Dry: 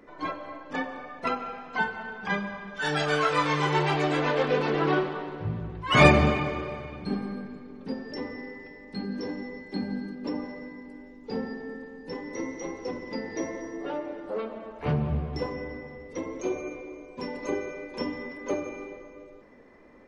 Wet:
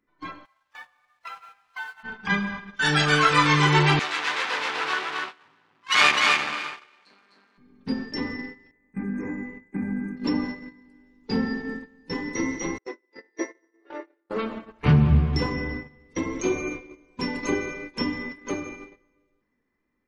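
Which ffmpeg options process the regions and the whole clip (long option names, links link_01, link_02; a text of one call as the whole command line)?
ffmpeg -i in.wav -filter_complex "[0:a]asettb=1/sr,asplit=3[link_01][link_02][link_03];[link_01]atrim=end=0.454[link_04];[link_02]atrim=start=0.45:end=2.03,asetpts=PTS-STARTPTS,afade=type=in:duration=0.004:curve=qsin,afade=type=out:start_time=1.576:duration=0.004:curve=qsin,highpass=frequency=670:width=0.5412,highpass=frequency=670:width=1.3066,acompressor=threshold=-36dB:ratio=2:attack=3.2:release=140:knee=1:detection=peak,aeval=exprs='sgn(val(0))*max(abs(val(0))-0.0015,0)':channel_layout=same[link_05];[link_03]atrim=start=2.026[link_06];[link_04][link_05]acrossfade=duration=0.004:curve1=hsin:curve2=qsin[link_07];[link_07][link_06]acrossfade=duration=0.004:curve1=qsin:curve2=hsin,asettb=1/sr,asplit=3[link_08][link_09][link_10];[link_08]atrim=end=3.994[link_11];[link_09]atrim=start=3.99:end=7.58,asetpts=PTS-STARTPTS,afade=type=in:duration=0.004:curve=qsin,afade=type=out:start_time=3.586:duration=0.004:curve=qsin,aeval=exprs='max(val(0),0)':channel_layout=same,highpass=720,lowpass=7900,aecho=1:1:254:0.708,atrim=end_sample=158319[link_12];[link_10]atrim=start=7.576[link_13];[link_11][link_12]acrossfade=duration=0.004:curve1=hsin:curve2=qsin[link_14];[link_14][link_13]acrossfade=duration=0.004:curve1=qsin:curve2=hsin,asettb=1/sr,asplit=3[link_15][link_16][link_17];[link_15]atrim=end=8.714[link_18];[link_16]atrim=start=8.71:end=10.17,asetpts=PTS-STARTPTS,afade=type=in:duration=0.004:curve=qsin,afade=type=out:start_time=1.456:duration=0.004:curve=qsin,acompressor=threshold=-35dB:ratio=2.5:attack=3.2:release=140:knee=1:detection=peak,asuperstop=centerf=4000:order=20:qfactor=1.1,agate=range=-33dB:threshold=-41dB:ratio=3:release=100:detection=peak[link_19];[link_17]atrim=start=10.166[link_20];[link_18][link_19]acrossfade=duration=0.004:curve1=hsin:curve2=qsin[link_21];[link_21][link_20]acrossfade=duration=0.004:curve1=qsin:curve2=hsin,asettb=1/sr,asplit=3[link_22][link_23][link_24];[link_22]atrim=end=12.784[link_25];[link_23]atrim=start=12.78:end=14.3,asetpts=PTS-STARTPTS,afade=type=in:duration=0.004:curve=qsin,afade=type=out:start_time=1.516:duration=0.004:curve=qsin,agate=range=-33dB:threshold=-26dB:ratio=3:release=100:detection=peak,highpass=frequency=360:width=0.5412,highpass=frequency=360:width=1.3066,equalizer=frequency=370:width_type=q:width=4:gain=9,equalizer=frequency=570:width_type=q:width=4:gain=4,equalizer=frequency=1900:width_type=q:width=4:gain=5,equalizer=frequency=3100:width_type=q:width=4:gain=-6,equalizer=frequency=5100:width_type=q:width=4:gain=-4,lowpass=frequency=7800:width=0.5412,lowpass=frequency=7800:width=1.3066[link_26];[link_24]atrim=start=14.296[link_27];[link_25][link_26]acrossfade=duration=0.004:curve1=hsin:curve2=qsin[link_28];[link_28][link_27]acrossfade=duration=0.004:curve1=qsin:curve2=hsin,agate=range=-18dB:threshold=-38dB:ratio=16:detection=peak,equalizer=frequency=580:width=1.2:gain=-13,dynaudnorm=framelen=490:gausssize=9:maxgain=12dB,volume=-1dB" out.wav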